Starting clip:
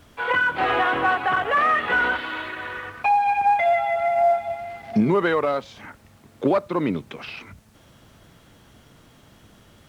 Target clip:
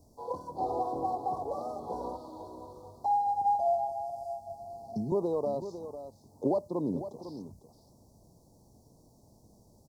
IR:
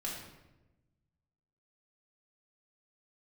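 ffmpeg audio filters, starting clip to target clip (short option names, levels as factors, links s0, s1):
-filter_complex "[0:a]asettb=1/sr,asplit=3[s0][s1][s2];[s0]atrim=end=3.894[s3];[s1]atrim=start=3.89:end=5.12,asetpts=PTS-STARTPTS,afade=t=in:d=0.004:c=qsin,afade=t=out:st=1.226:d=0.004:c=qsin,acrossover=split=150|3000[s4][s5][s6];[s5]acompressor=threshold=0.0355:ratio=6[s7];[s4][s7][s6]amix=inputs=3:normalize=0[s8];[s2]atrim=start=5.116[s9];[s3][s8]acrossfade=d=0.004:c1=hsin:c2=qsin[s10];[s10][s9]acrossfade=d=0.004:c1=qsin:c2=hsin,asuperstop=centerf=2100:order=12:qfactor=0.57,aecho=1:1:501:0.282,volume=0.398"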